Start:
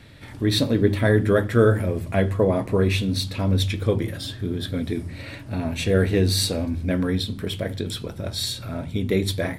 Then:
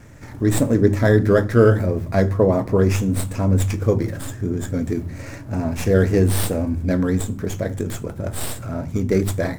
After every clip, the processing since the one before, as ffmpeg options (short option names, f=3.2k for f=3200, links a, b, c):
-filter_complex "[0:a]lowpass=10k,acrossover=split=2200[a][b];[b]aeval=exprs='abs(val(0))':c=same[c];[a][c]amix=inputs=2:normalize=0,volume=3.5dB"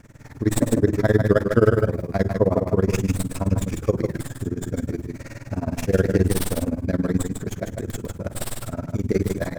-af "tremolo=f=19:d=0.96,aecho=1:1:150:0.531"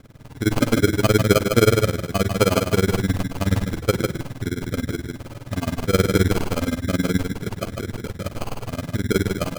-af "acrusher=samples=24:mix=1:aa=0.000001,volume=1dB"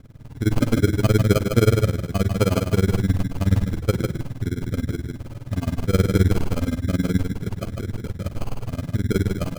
-af "lowshelf=f=240:g=10.5,volume=-6dB"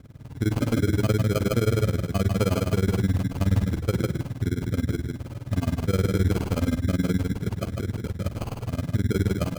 -af "alimiter=limit=-12.5dB:level=0:latency=1:release=43,highpass=45"